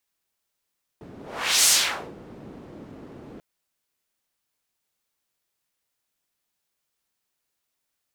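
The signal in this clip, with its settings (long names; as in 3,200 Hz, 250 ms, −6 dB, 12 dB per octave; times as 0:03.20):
pass-by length 2.39 s, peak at 0:00.66, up 0.51 s, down 0.51 s, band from 280 Hz, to 7,200 Hz, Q 1.2, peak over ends 26 dB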